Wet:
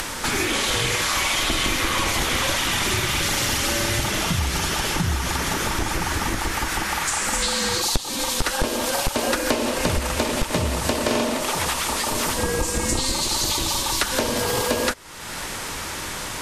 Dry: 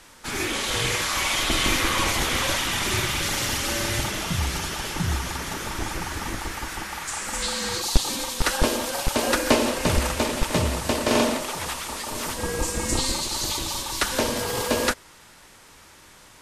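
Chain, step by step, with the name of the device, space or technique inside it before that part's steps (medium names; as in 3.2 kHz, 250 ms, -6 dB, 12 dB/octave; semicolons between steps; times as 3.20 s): upward and downward compression (upward compressor, threshold -25 dBFS; compression 5:1, threshold -26 dBFS, peak gain reduction 15 dB); trim +7 dB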